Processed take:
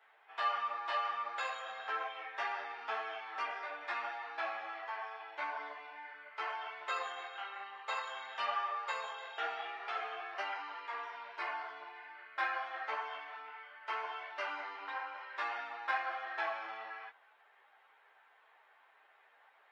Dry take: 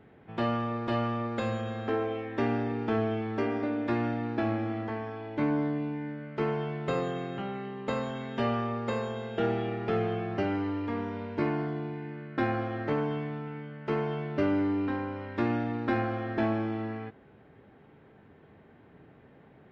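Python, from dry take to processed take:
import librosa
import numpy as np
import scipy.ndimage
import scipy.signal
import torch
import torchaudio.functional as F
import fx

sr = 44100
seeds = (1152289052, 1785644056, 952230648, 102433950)

y = scipy.signal.sosfilt(scipy.signal.butter(4, 830.0, 'highpass', fs=sr, output='sos'), x)
y = fx.ensemble(y, sr)
y = y * librosa.db_to_amplitude(3.0)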